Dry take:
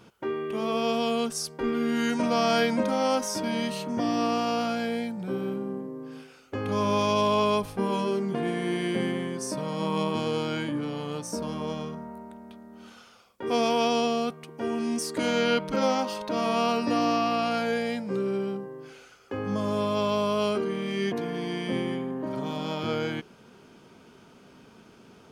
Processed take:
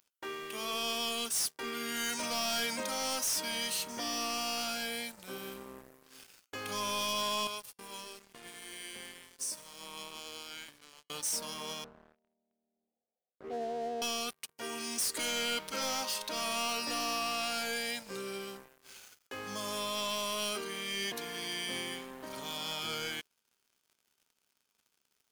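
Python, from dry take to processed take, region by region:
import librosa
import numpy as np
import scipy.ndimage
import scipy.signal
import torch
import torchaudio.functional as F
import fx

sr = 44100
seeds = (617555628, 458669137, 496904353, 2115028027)

y = fx.chain(x, sr, fx.gate_hold(open_db=-22.0, close_db=-30.0, hold_ms=71.0, range_db=-21, attack_ms=1.4, release_ms=100.0),
    fx.comb_fb(f0_hz=170.0, decay_s=1.6, harmonics='all', damping=0.0, mix_pct=70), at=(7.47, 11.1))
y = fx.chain(y, sr, fx.law_mismatch(coded='mu'),
    fx.steep_lowpass(hz=770.0, slope=72),
    fx.low_shelf(hz=100.0, db=-8.0), at=(11.84, 14.02))
y = scipy.signal.lfilter([1.0, -0.97], [1.0], y)
y = fx.leveller(y, sr, passes=5)
y = F.gain(torch.from_numpy(y), -7.0).numpy()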